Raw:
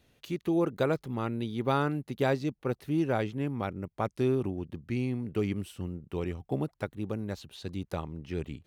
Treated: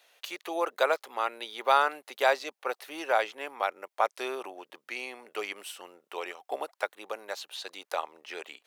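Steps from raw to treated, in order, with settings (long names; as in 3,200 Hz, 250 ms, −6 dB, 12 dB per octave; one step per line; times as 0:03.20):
high-pass filter 610 Hz 24 dB per octave
level +8 dB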